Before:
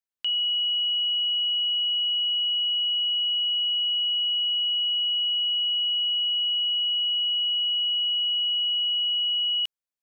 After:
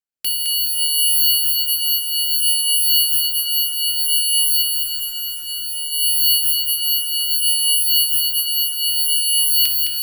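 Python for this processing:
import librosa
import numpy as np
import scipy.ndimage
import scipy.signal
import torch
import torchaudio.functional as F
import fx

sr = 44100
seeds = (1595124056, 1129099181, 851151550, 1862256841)

p1 = fx.envelope_flatten(x, sr, power=0.6)
p2 = fx.dereverb_blind(p1, sr, rt60_s=1.3)
p3 = fx.rotary(p2, sr, hz=0.6)
p4 = fx.rev_fdn(p3, sr, rt60_s=1.8, lf_ratio=1.0, hf_ratio=0.65, size_ms=37.0, drr_db=4.0)
p5 = fx.volume_shaper(p4, sr, bpm=92, per_beat=1, depth_db=-3, release_ms=130.0, shape='slow start')
p6 = p5 + fx.echo_diffused(p5, sr, ms=617, feedback_pct=54, wet_db=-8.0, dry=0)
p7 = fx.tube_stage(p6, sr, drive_db=35.0, bias=0.7, at=(4.61, 5.91), fade=0.02)
p8 = (np.kron(scipy.signal.resample_poly(p7, 1, 6), np.eye(6)[0]) * 6)[:len(p7)]
p9 = fx.echo_crushed(p8, sr, ms=212, feedback_pct=55, bits=7, wet_db=-4.0)
y = p9 * librosa.db_to_amplitude(3.0)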